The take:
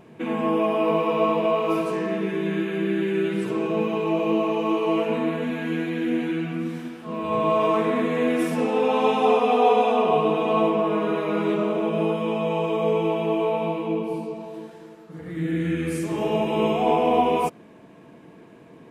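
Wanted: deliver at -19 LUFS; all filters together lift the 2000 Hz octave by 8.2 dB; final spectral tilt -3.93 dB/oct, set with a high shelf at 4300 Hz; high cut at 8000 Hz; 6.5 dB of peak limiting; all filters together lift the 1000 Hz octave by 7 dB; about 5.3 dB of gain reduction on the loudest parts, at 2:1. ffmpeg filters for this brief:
-af "lowpass=8k,equalizer=f=1k:t=o:g=7,equalizer=f=2k:t=o:g=7,highshelf=f=4.3k:g=7.5,acompressor=threshold=-20dB:ratio=2,volume=5dB,alimiter=limit=-9.5dB:level=0:latency=1"

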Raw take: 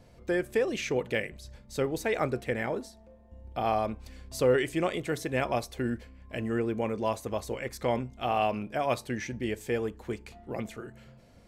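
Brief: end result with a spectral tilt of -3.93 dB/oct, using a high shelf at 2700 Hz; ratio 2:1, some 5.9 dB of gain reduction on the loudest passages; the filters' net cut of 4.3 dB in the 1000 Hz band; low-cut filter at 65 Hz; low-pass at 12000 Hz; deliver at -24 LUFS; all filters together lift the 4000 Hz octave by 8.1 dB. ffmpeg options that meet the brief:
-af "highpass=65,lowpass=12k,equalizer=f=1k:t=o:g=-7.5,highshelf=f=2.7k:g=5,equalizer=f=4k:t=o:g=7.5,acompressor=threshold=-31dB:ratio=2,volume=10.5dB"

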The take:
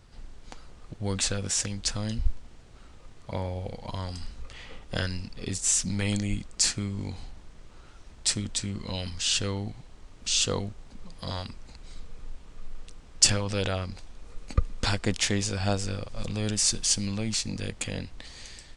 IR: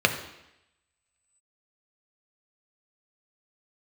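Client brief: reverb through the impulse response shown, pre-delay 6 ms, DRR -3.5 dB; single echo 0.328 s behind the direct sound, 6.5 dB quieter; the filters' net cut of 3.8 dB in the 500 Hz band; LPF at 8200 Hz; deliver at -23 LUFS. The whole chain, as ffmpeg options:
-filter_complex "[0:a]lowpass=8.2k,equalizer=f=500:t=o:g=-4.5,aecho=1:1:328:0.473,asplit=2[a][b];[1:a]atrim=start_sample=2205,adelay=6[c];[b][c]afir=irnorm=-1:irlink=0,volume=-13dB[d];[a][d]amix=inputs=2:normalize=0,volume=2.5dB"

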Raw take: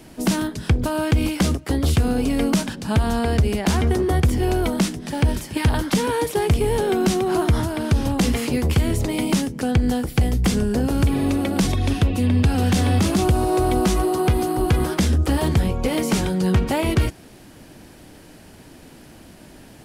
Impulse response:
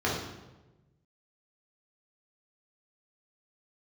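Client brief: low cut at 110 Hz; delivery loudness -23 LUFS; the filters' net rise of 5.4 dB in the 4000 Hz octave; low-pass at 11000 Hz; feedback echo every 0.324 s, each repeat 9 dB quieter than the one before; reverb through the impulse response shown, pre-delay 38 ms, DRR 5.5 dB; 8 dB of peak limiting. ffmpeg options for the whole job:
-filter_complex "[0:a]highpass=110,lowpass=11k,equalizer=f=4k:t=o:g=7,alimiter=limit=-14dB:level=0:latency=1,aecho=1:1:324|648|972|1296:0.355|0.124|0.0435|0.0152,asplit=2[a][b];[1:a]atrim=start_sample=2205,adelay=38[c];[b][c]afir=irnorm=-1:irlink=0,volume=-17.5dB[d];[a][d]amix=inputs=2:normalize=0,volume=-2dB"

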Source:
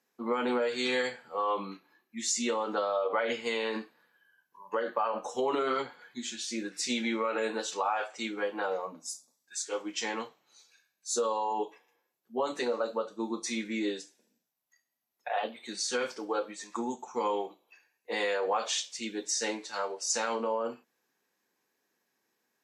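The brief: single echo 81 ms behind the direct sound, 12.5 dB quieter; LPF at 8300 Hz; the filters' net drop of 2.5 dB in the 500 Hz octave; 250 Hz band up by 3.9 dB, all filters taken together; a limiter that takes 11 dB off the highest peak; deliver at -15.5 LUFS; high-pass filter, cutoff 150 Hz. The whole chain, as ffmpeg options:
-af "highpass=150,lowpass=8.3k,equalizer=f=250:t=o:g=6.5,equalizer=f=500:t=o:g=-4.5,alimiter=level_in=5dB:limit=-24dB:level=0:latency=1,volume=-5dB,aecho=1:1:81:0.237,volume=22.5dB"

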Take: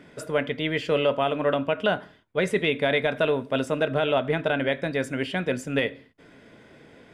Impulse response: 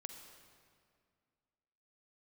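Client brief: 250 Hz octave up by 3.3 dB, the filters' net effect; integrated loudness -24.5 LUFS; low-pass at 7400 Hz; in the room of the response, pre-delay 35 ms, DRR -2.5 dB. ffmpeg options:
-filter_complex "[0:a]lowpass=7.4k,equalizer=f=250:t=o:g=4,asplit=2[a][b];[1:a]atrim=start_sample=2205,adelay=35[c];[b][c]afir=irnorm=-1:irlink=0,volume=6.5dB[d];[a][d]amix=inputs=2:normalize=0,volume=-4.5dB"

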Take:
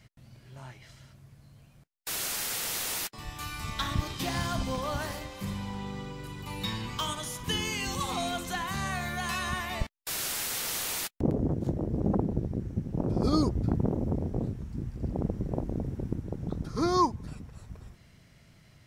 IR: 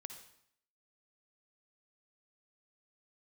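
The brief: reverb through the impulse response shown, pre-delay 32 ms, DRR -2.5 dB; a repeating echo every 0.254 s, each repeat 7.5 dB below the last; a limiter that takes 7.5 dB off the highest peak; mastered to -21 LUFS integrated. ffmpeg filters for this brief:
-filter_complex "[0:a]alimiter=limit=-21.5dB:level=0:latency=1,aecho=1:1:254|508|762|1016|1270:0.422|0.177|0.0744|0.0312|0.0131,asplit=2[a][b];[1:a]atrim=start_sample=2205,adelay=32[c];[b][c]afir=irnorm=-1:irlink=0,volume=7dB[d];[a][d]amix=inputs=2:normalize=0,volume=7dB"

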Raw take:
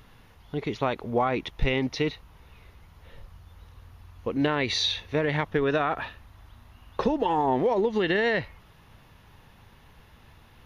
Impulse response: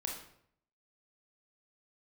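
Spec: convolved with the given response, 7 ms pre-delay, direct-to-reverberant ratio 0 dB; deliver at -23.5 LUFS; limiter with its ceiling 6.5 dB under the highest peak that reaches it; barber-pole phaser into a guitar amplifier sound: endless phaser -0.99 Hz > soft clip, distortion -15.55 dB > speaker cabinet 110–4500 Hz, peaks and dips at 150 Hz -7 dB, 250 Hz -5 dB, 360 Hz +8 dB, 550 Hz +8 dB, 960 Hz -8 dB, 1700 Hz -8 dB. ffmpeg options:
-filter_complex "[0:a]alimiter=limit=-18dB:level=0:latency=1,asplit=2[a][b];[1:a]atrim=start_sample=2205,adelay=7[c];[b][c]afir=irnorm=-1:irlink=0,volume=-1dB[d];[a][d]amix=inputs=2:normalize=0,asplit=2[e][f];[f]afreqshift=-0.99[g];[e][g]amix=inputs=2:normalize=1,asoftclip=threshold=-21dB,highpass=110,equalizer=f=150:t=q:w=4:g=-7,equalizer=f=250:t=q:w=4:g=-5,equalizer=f=360:t=q:w=4:g=8,equalizer=f=550:t=q:w=4:g=8,equalizer=f=960:t=q:w=4:g=-8,equalizer=f=1.7k:t=q:w=4:g=-8,lowpass=f=4.5k:w=0.5412,lowpass=f=4.5k:w=1.3066,volume=5dB"

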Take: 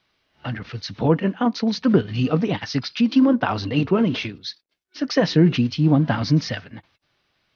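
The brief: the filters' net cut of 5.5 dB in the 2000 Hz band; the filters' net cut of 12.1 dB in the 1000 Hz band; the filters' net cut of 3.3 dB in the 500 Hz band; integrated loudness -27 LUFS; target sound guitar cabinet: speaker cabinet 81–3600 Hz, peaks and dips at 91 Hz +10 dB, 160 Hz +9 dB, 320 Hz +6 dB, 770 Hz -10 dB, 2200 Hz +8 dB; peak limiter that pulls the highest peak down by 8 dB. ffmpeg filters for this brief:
-af "equalizer=f=500:t=o:g=-4,equalizer=f=1k:t=o:g=-8,equalizer=f=2k:t=o:g=-8,alimiter=limit=-14dB:level=0:latency=1,highpass=81,equalizer=f=91:t=q:w=4:g=10,equalizer=f=160:t=q:w=4:g=9,equalizer=f=320:t=q:w=4:g=6,equalizer=f=770:t=q:w=4:g=-10,equalizer=f=2.2k:t=q:w=4:g=8,lowpass=f=3.6k:w=0.5412,lowpass=f=3.6k:w=1.3066,volume=-7dB"

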